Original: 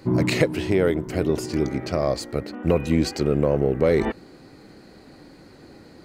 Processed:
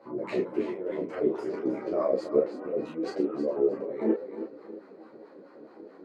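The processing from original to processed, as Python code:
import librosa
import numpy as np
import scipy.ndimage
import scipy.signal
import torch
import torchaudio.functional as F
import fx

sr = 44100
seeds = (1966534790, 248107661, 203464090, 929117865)

y = fx.over_compress(x, sr, threshold_db=-23.0, ratio=-0.5)
y = scipy.signal.sosfilt(scipy.signal.butter(2, 230.0, 'highpass', fs=sr, output='sos'), y)
y = fx.low_shelf(y, sr, hz=370.0, db=8.0)
y = fx.wah_lfo(y, sr, hz=4.6, low_hz=380.0, high_hz=1100.0, q=2.9)
y = fx.peak_eq(y, sr, hz=810.0, db=-5.5, octaves=0.42)
y = fx.doubler(y, sr, ms=31.0, db=-3)
y = fx.echo_feedback(y, sr, ms=316, feedback_pct=28, wet_db=-10.5)
y = fx.ensemble(y, sr)
y = F.gain(torch.from_numpy(y), 3.5).numpy()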